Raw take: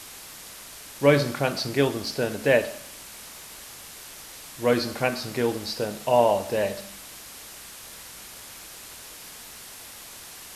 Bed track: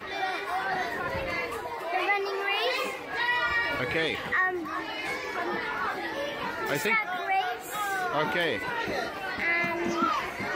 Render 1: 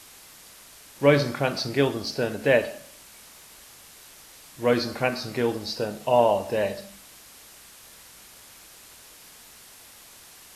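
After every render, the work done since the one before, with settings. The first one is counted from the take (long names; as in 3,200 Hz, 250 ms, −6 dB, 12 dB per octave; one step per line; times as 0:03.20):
noise reduction from a noise print 6 dB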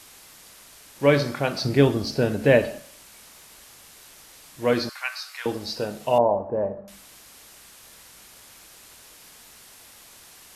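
0:01.62–0:02.80: low-shelf EQ 330 Hz +10 dB
0:04.89–0:05.46: inverse Chebyshev high-pass filter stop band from 250 Hz, stop band 70 dB
0:06.18–0:06.88: low-pass filter 1,100 Hz 24 dB per octave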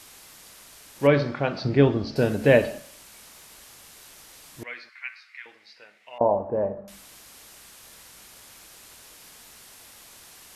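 0:01.07–0:02.16: high-frequency loss of the air 210 metres
0:04.63–0:06.21: resonant band-pass 2,100 Hz, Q 5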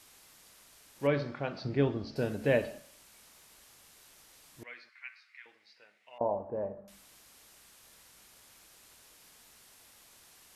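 level −10 dB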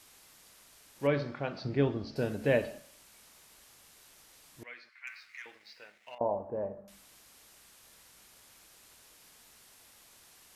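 0:05.07–0:06.15: leveller curve on the samples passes 2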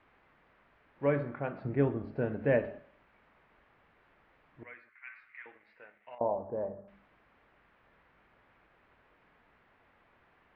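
low-pass filter 2,100 Hz 24 dB per octave
hum removal 101.5 Hz, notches 4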